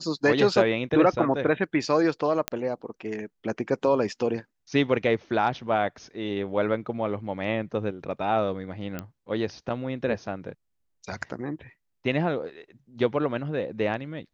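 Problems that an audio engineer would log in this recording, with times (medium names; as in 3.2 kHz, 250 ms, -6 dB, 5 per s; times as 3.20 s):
2.48 s: pop -9 dBFS
8.99 s: pop -17 dBFS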